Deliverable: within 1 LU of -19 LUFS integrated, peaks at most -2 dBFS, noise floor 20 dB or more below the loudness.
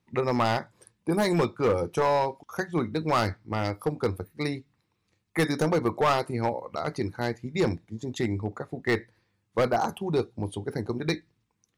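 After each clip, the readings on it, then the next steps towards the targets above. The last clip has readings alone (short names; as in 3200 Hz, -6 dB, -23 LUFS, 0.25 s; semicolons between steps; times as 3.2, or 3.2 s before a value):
clipped 1.5%; flat tops at -18.0 dBFS; loudness -28.5 LUFS; peak -18.0 dBFS; loudness target -19.0 LUFS
-> clip repair -18 dBFS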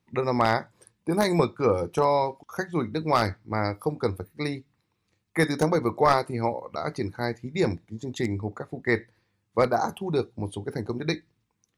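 clipped 0.0%; loudness -27.0 LUFS; peak -9.0 dBFS; loudness target -19.0 LUFS
-> gain +8 dB; limiter -2 dBFS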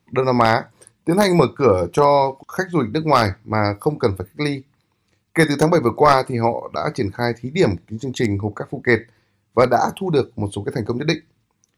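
loudness -19.5 LUFS; peak -2.0 dBFS; noise floor -68 dBFS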